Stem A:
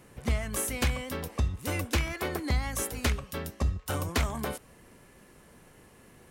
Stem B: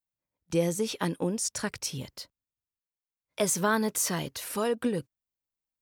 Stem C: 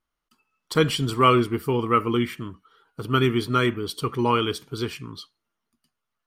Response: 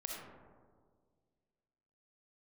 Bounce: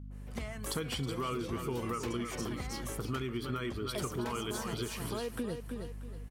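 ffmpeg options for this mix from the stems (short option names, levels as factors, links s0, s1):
-filter_complex "[0:a]highpass=100,adynamicequalizer=threshold=0.00398:dfrequency=1900:dqfactor=0.7:tfrequency=1900:tqfactor=0.7:attack=5:release=100:ratio=0.375:range=2.5:mode=cutabove:tftype=highshelf,adelay=100,volume=0.501[s0];[1:a]adelay=550,volume=1.12,asplit=2[s1][s2];[s2]volume=0.211[s3];[2:a]alimiter=limit=0.178:level=0:latency=1:release=215,aeval=exprs='val(0)+0.00891*(sin(2*PI*50*n/s)+sin(2*PI*2*50*n/s)/2+sin(2*PI*3*50*n/s)/3+sin(2*PI*4*50*n/s)/4+sin(2*PI*5*50*n/s)/5)':c=same,volume=0.75,asplit=3[s4][s5][s6];[s5]volume=0.355[s7];[s6]apad=whole_len=280681[s8];[s1][s8]sidechaincompress=threshold=0.0224:ratio=8:attack=6.5:release=1040[s9];[s3][s7]amix=inputs=2:normalize=0,aecho=0:1:318|636|954|1272:1|0.28|0.0784|0.022[s10];[s0][s9][s4][s10]amix=inputs=4:normalize=0,acompressor=threshold=0.02:ratio=4"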